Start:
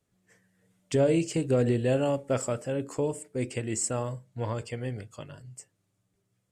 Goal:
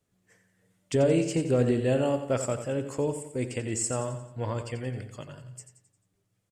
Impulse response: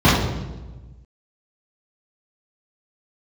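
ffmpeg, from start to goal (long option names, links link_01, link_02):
-af "aecho=1:1:88|176|264|352|440:0.316|0.155|0.0759|0.0372|0.0182"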